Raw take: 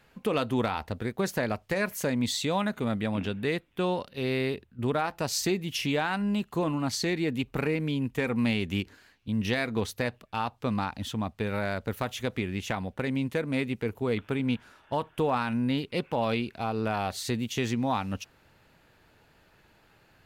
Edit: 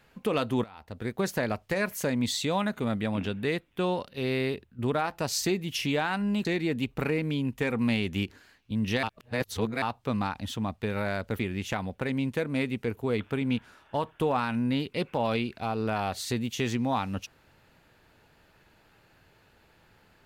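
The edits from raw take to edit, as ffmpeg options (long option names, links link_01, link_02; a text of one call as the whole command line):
ffmpeg -i in.wav -filter_complex "[0:a]asplit=6[link_01][link_02][link_03][link_04][link_05][link_06];[link_01]atrim=end=0.64,asetpts=PTS-STARTPTS,afade=type=out:start_time=0.636:duration=0.004:curve=hsin:silence=0.0944061[link_07];[link_02]atrim=start=0.64:end=6.452,asetpts=PTS-STARTPTS,afade=type=in:duration=0.45:curve=qua:silence=0.0944061[link_08];[link_03]atrim=start=7.018:end=9.602[link_09];[link_04]atrim=start=9.598:end=10.392,asetpts=PTS-STARTPTS,areverse[link_10];[link_05]atrim=start=10.388:end=11.962[link_11];[link_06]atrim=start=12.368[link_12];[link_07][link_08]concat=n=2:v=0:a=1[link_13];[link_13][link_09]acrossfade=duration=0.004:curve1=hsin:curve2=hsin[link_14];[link_14][link_10]acrossfade=duration=0.004:curve1=hsin:curve2=hsin[link_15];[link_15][link_11]acrossfade=duration=0.004:curve1=hsin:curve2=hsin[link_16];[link_16][link_12]acrossfade=duration=0.004:curve1=hsin:curve2=hsin" out.wav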